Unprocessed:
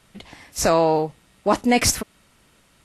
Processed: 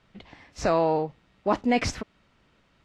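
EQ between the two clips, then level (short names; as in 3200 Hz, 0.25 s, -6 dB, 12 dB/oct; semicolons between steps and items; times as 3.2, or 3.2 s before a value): air absorption 160 m; -4.5 dB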